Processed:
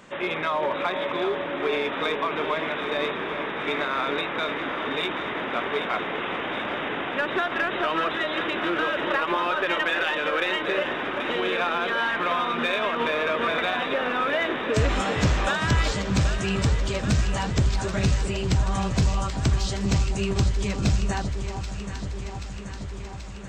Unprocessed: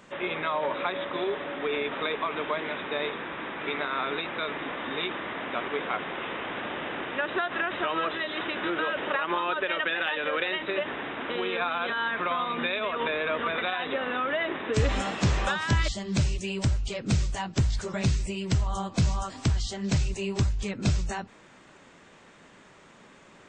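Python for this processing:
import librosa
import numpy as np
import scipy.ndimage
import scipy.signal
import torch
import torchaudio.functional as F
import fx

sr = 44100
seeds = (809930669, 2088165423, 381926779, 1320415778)

p1 = np.clip(x, -10.0 ** (-26.0 / 20.0), 10.0 ** (-26.0 / 20.0))
p2 = x + (p1 * librosa.db_to_amplitude(-6.0))
y = fx.echo_alternate(p2, sr, ms=391, hz=1100.0, feedback_pct=84, wet_db=-8.0)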